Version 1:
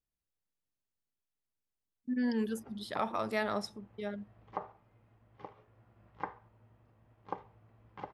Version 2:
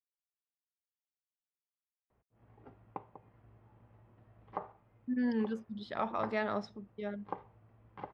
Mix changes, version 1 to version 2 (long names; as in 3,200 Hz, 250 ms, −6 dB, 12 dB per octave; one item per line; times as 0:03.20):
speech: entry +3.00 s
master: add high-frequency loss of the air 200 metres